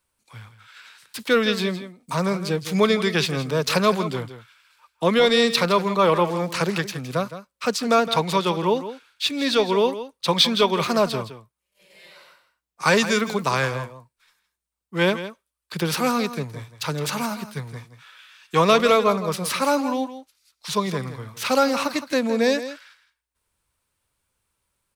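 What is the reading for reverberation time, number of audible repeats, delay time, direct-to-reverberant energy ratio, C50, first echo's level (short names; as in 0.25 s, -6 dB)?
none, 1, 0.164 s, none, none, -12.5 dB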